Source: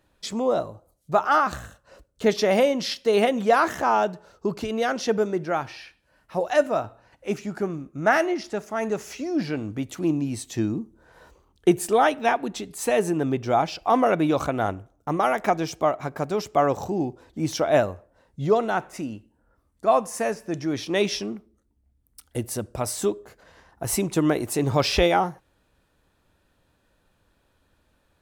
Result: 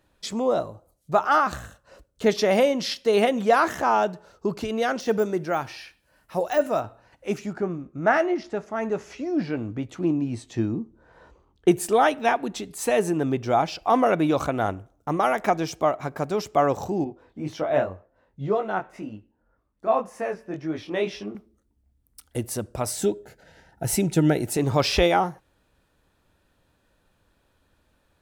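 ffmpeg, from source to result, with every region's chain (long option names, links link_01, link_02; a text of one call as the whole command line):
ffmpeg -i in.wav -filter_complex "[0:a]asettb=1/sr,asplit=3[link_01][link_02][link_03];[link_01]atrim=end=5.004[link_04];[link_02]atrim=start=5:end=6.81,asetpts=PTS-STARTPTS,afade=type=in:duration=0.004:curve=qsin,afade=type=out:start_time=1.806:duration=0.004:curve=qsin,deesser=0.95,highshelf=frequency=9100:gain=11[link_05];[link_03]atrim=start=6.806[link_06];[link_04][link_05]acrossfade=duration=0.004:curve1=hsin:curve2=qsin[link_07];[link_07][link_06]acrossfade=duration=0.004:curve1=qsin:curve2=hsin,asettb=1/sr,asplit=3[link_08][link_09][link_10];[link_08]atrim=end=7.534[link_11];[link_09]atrim=start=7.53:end=11.68,asetpts=PTS-STARTPTS,afade=type=in:duration=0.004:curve=qsin,afade=type=out:start_time=4.146:duration=0.004:curve=qsin,lowpass=8400,highshelf=frequency=3500:gain=-10.5,asplit=2[link_12][link_13];[link_13]adelay=17,volume=-13dB[link_14];[link_12][link_14]amix=inputs=2:normalize=0,atrim=end_sample=183015[link_15];[link_10]atrim=start=11.676[link_16];[link_11][link_15]acrossfade=duration=0.004:curve1=hsin:curve2=qsin[link_17];[link_17][link_16]acrossfade=duration=0.004:curve1=qsin:curve2=hsin,asettb=1/sr,asplit=3[link_18][link_19][link_20];[link_18]atrim=end=17.044[link_21];[link_19]atrim=start=17.04:end=21.35,asetpts=PTS-STARTPTS,afade=type=in:duration=0.004:curve=qsin,afade=type=out:start_time=4.306:duration=0.004:curve=qsin,bass=frequency=250:gain=-2,treble=frequency=4000:gain=-14,flanger=delay=19:depth=3.6:speed=1.9[link_22];[link_20]atrim=start=21.346[link_23];[link_21][link_22]acrossfade=duration=0.004:curve1=hsin:curve2=qsin[link_24];[link_24][link_23]acrossfade=duration=0.004:curve1=qsin:curve2=hsin,asettb=1/sr,asplit=3[link_25][link_26][link_27];[link_25]atrim=end=22.914[link_28];[link_26]atrim=start=22.91:end=24.57,asetpts=PTS-STARTPTS,afade=type=in:duration=0.004:curve=qsin,afade=type=out:start_time=1.656:duration=0.004:curve=qsin,asuperstop=centerf=1100:order=12:qfactor=3.7,equalizer=frequency=150:width=2:gain=6.5[link_29];[link_27]atrim=start=24.566[link_30];[link_28][link_29]acrossfade=duration=0.004:curve1=hsin:curve2=qsin[link_31];[link_31][link_30]acrossfade=duration=0.004:curve1=qsin:curve2=hsin" out.wav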